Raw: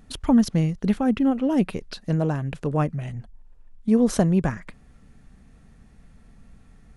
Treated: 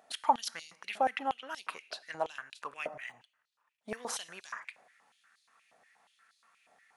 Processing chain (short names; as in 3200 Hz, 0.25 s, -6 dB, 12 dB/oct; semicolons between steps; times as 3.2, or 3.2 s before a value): 2.95–4.08 median filter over 3 samples; two-slope reverb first 0.74 s, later 2 s, from -27 dB, DRR 16.5 dB; stepped high-pass 8.4 Hz 670–4100 Hz; gain -5.5 dB